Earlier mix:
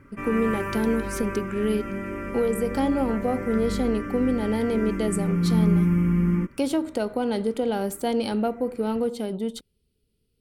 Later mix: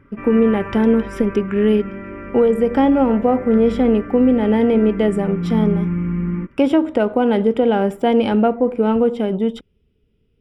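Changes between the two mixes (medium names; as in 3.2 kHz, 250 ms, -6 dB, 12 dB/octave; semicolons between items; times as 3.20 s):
speech +9.5 dB; master: add Savitzky-Golay filter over 25 samples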